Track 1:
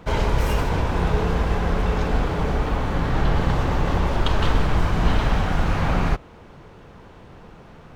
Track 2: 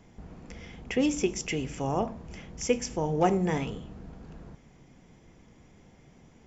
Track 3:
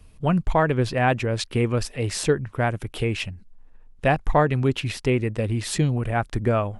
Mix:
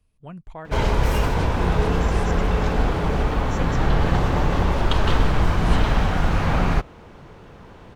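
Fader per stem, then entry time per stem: +1.0 dB, -9.5 dB, -17.5 dB; 0.65 s, 0.90 s, 0.00 s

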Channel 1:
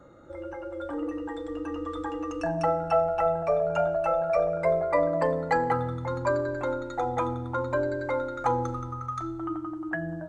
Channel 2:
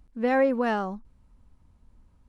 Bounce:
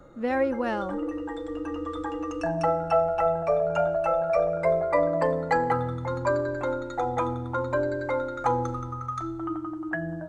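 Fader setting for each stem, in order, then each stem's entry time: +1.0 dB, -3.0 dB; 0.00 s, 0.00 s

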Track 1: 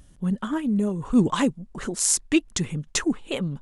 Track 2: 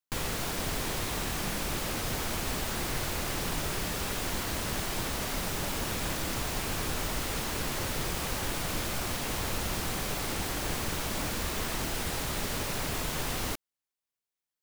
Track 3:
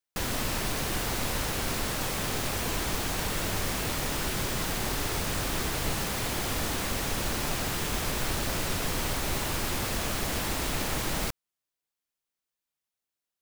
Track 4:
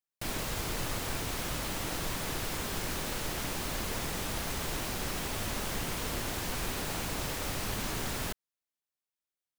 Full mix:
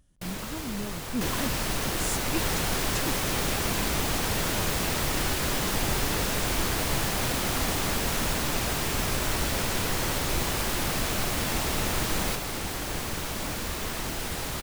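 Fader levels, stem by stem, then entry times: -12.5 dB, +0.5 dB, +0.5 dB, -1.5 dB; 0.00 s, 2.25 s, 1.05 s, 0.00 s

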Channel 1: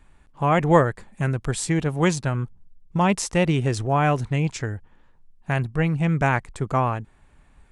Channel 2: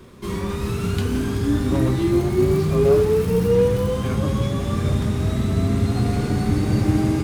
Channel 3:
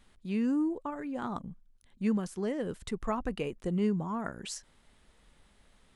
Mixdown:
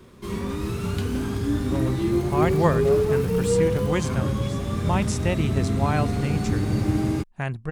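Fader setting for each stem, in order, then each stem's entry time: -5.0 dB, -4.0 dB, -7.0 dB; 1.90 s, 0.00 s, 0.00 s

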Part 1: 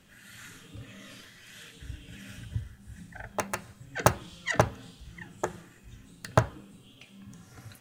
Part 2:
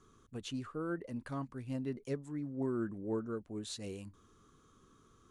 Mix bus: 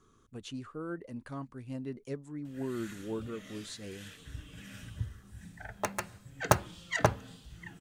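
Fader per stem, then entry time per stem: -2.5 dB, -1.0 dB; 2.45 s, 0.00 s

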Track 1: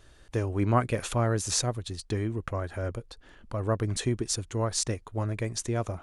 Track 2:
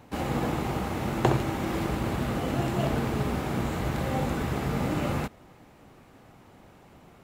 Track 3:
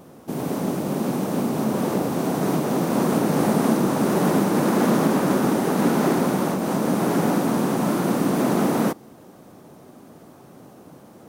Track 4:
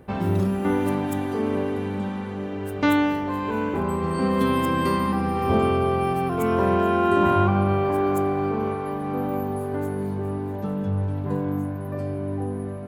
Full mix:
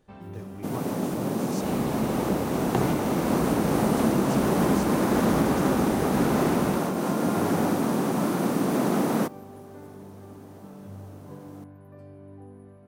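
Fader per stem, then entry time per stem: -15.5 dB, -4.5 dB, -3.5 dB, -17.5 dB; 0.00 s, 1.50 s, 0.35 s, 0.00 s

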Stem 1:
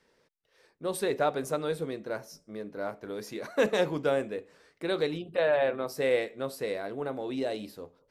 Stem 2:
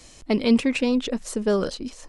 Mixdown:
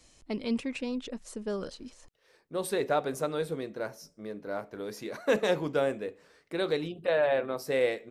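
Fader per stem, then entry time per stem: -0.5 dB, -12.0 dB; 1.70 s, 0.00 s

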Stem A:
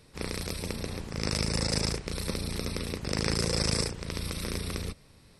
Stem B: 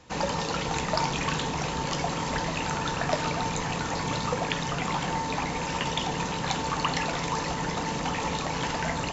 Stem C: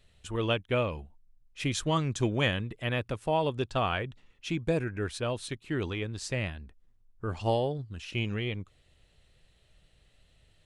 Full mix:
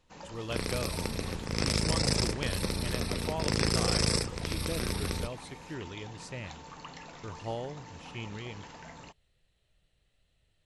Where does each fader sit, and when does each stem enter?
+0.5 dB, -18.5 dB, -9.0 dB; 0.35 s, 0.00 s, 0.00 s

